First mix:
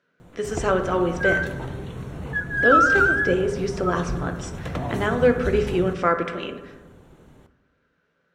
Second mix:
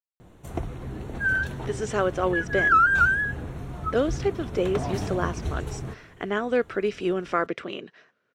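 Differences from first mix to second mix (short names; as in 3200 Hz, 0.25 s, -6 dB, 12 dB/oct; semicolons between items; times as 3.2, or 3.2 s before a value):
speech: entry +1.30 s; reverb: off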